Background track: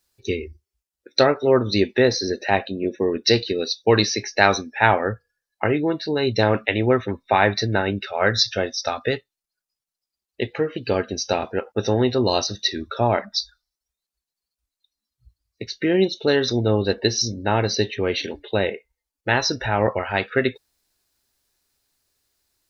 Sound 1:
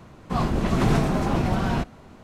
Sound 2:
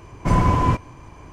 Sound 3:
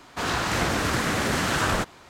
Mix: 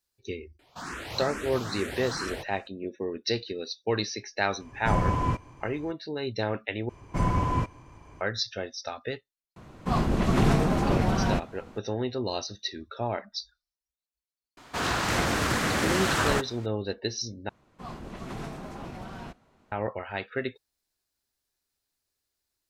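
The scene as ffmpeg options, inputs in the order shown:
-filter_complex "[3:a]asplit=2[s0][s1];[2:a]asplit=2[s2][s3];[1:a]asplit=2[s4][s5];[0:a]volume=0.282[s6];[s0]asplit=2[s7][s8];[s8]afreqshift=2.3[s9];[s7][s9]amix=inputs=2:normalize=1[s10];[s5]lowshelf=f=290:g=-5.5[s11];[s6]asplit=3[s12][s13][s14];[s12]atrim=end=6.894[s15];[s3]atrim=end=1.32,asetpts=PTS-STARTPTS,volume=0.398[s16];[s13]atrim=start=8.206:end=17.494[s17];[s11]atrim=end=2.23,asetpts=PTS-STARTPTS,volume=0.2[s18];[s14]atrim=start=19.716[s19];[s10]atrim=end=2.09,asetpts=PTS-STARTPTS,volume=0.355,afade=t=in:d=0.004:c=hsin,afade=t=out:st=2.086:d=0.004:c=hsin,adelay=590[s20];[s2]atrim=end=1.32,asetpts=PTS-STARTPTS,volume=0.398,afade=t=in:d=0.004:c=hsin,afade=t=out:st=1.316:d=0.004:c=hsin,adelay=4600[s21];[s4]atrim=end=2.23,asetpts=PTS-STARTPTS,volume=0.841,afade=t=in:d=0.004:c=hsin,afade=t=out:st=2.226:d=0.004:c=hsin,adelay=9560[s22];[s1]atrim=end=2.09,asetpts=PTS-STARTPTS,volume=0.841,afade=t=in:d=0.004:c=hsin,afade=t=out:st=2.086:d=0.004:c=hsin,adelay=14570[s23];[s15][s16]acrossfade=d=0.004:c1=hsin:c2=hsin[s24];[s24][s17]acrossfade=d=0.004:c1=hsin:c2=hsin[s25];[s25][s18]acrossfade=d=0.004:c1=hsin:c2=hsin[s26];[s26][s19]acrossfade=d=0.004:c1=hsin:c2=hsin[s27];[s27][s20][s21][s22][s23]amix=inputs=5:normalize=0"

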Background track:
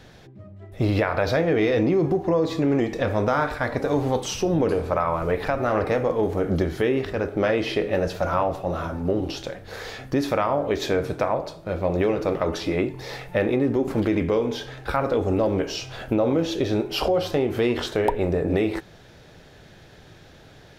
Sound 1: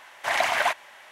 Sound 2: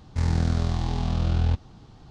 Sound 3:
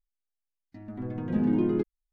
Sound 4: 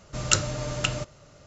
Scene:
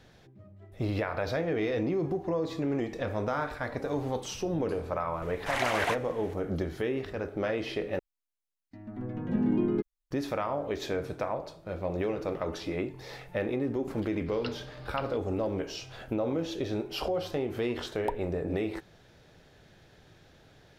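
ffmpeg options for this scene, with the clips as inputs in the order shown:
-filter_complex "[0:a]volume=0.355[s0];[4:a]aresample=11025,aresample=44100[s1];[s0]asplit=2[s2][s3];[s2]atrim=end=7.994[s4];[3:a]atrim=end=2.12,asetpts=PTS-STARTPTS,volume=0.794[s5];[s3]atrim=start=10.106[s6];[1:a]atrim=end=1.11,asetpts=PTS-STARTPTS,volume=0.473,afade=t=in:d=0.004:c=hsin,afade=t=out:st=1.106:d=0.004:c=hsin,adelay=5220[s7];[s1]atrim=end=1.46,asetpts=PTS-STARTPTS,volume=0.158,afade=t=in:d=0.004:c=hsin,afade=t=out:st=1.456:d=0.004:c=hsin,adelay=14130[s8];[s4][s5]acrossfade=d=0.004:c1=hsin:c2=hsin[s9];[s9][s6]acrossfade=d=0.004:c1=hsin:c2=hsin[s10];[s10][s7][s8]amix=inputs=3:normalize=0"

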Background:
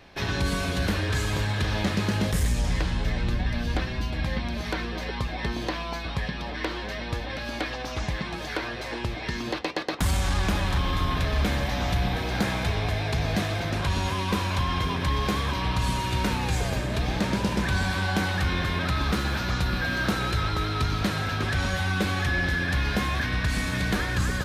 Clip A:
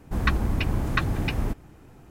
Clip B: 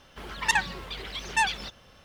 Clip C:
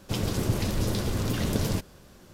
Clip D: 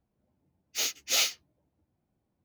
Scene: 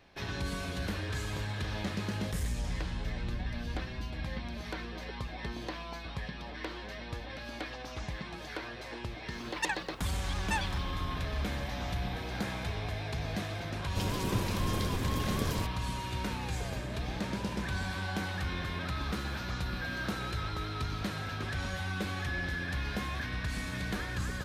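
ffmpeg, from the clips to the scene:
-filter_complex "[0:a]volume=0.335[s0];[2:a]atrim=end=2.04,asetpts=PTS-STARTPTS,volume=0.335,afade=t=in:d=0.004:c=hsin,afade=t=out:st=2.036:d=0.004:c=hsin,adelay=403074S[s1];[3:a]atrim=end=2.33,asetpts=PTS-STARTPTS,volume=0.501,afade=t=in:d=0.004:c=hsin,afade=t=out:st=2.326:d=0.004:c=hsin,adelay=13860[s2];[s0][s1][s2]amix=inputs=3:normalize=0"

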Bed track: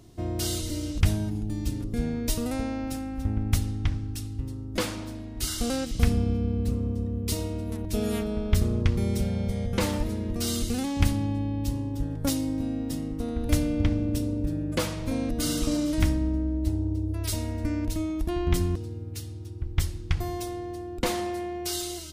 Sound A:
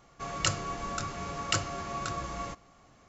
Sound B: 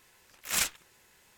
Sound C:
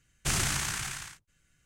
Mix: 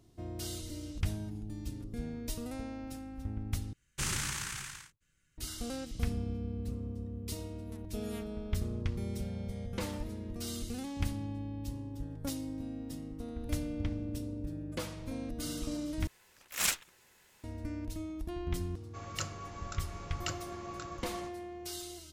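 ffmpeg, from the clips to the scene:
-filter_complex "[0:a]volume=0.282[s0];[3:a]equalizer=f=690:w=7.8:g=-14.5[s1];[s0]asplit=3[s2][s3][s4];[s2]atrim=end=3.734[s5];[s1]atrim=end=1.65,asetpts=PTS-STARTPTS,volume=0.531[s6];[s3]atrim=start=5.376:end=16.074[s7];[2:a]atrim=end=1.37,asetpts=PTS-STARTPTS,volume=0.794[s8];[s4]atrim=start=17.436[s9];[1:a]atrim=end=3.08,asetpts=PTS-STARTPTS,volume=0.335,afade=t=in:d=0.004:c=hsin,afade=t=out:st=3.076:d=0.004:c=hsin,adelay=18740[s10];[s5][s6]acrossfade=d=0.004:c1=hsin:c2=hsin[s11];[s11][s7]acrossfade=d=0.004:c1=hsin:c2=hsin[s12];[s12][s8]acrossfade=d=0.004:c1=hsin:c2=hsin[s13];[s13][s9]acrossfade=d=0.004:c1=hsin:c2=hsin[s14];[s14][s10]amix=inputs=2:normalize=0"

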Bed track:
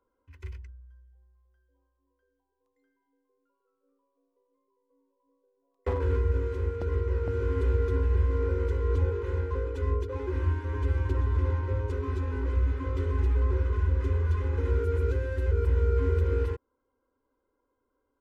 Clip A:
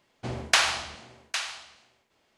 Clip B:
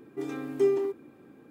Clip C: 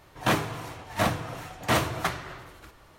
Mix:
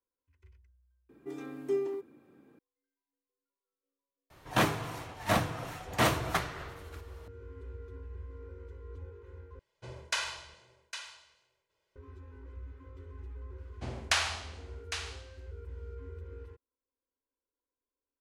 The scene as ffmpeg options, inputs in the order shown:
-filter_complex "[1:a]asplit=2[s0][s1];[0:a]volume=0.106[s2];[s0]aecho=1:1:2:0.9[s3];[s2]asplit=2[s4][s5];[s4]atrim=end=9.594[s6];[s3]atrim=end=2.37,asetpts=PTS-STARTPTS,volume=0.2[s7];[s5]atrim=start=11.956[s8];[2:a]atrim=end=1.5,asetpts=PTS-STARTPTS,volume=0.447,afade=t=in:d=0.004:c=hsin,afade=t=out:st=1.496:d=0.004:c=hsin,adelay=1090[s9];[3:a]atrim=end=2.98,asetpts=PTS-STARTPTS,volume=0.75,afade=t=in:d=0.004:c=hsin,afade=t=out:st=2.976:d=0.004:c=hsin,adelay=4300[s10];[s1]atrim=end=2.37,asetpts=PTS-STARTPTS,volume=0.447,afade=t=in:d=0.004:c=hsin,afade=t=out:st=2.366:d=0.004:c=hsin,adelay=13580[s11];[s6][s7]acrossfade=d=0.004:c1=hsin:c2=hsin[s12];[s12][s8]acrossfade=d=0.004:c1=hsin:c2=hsin[s13];[s13][s9][s10][s11]amix=inputs=4:normalize=0"

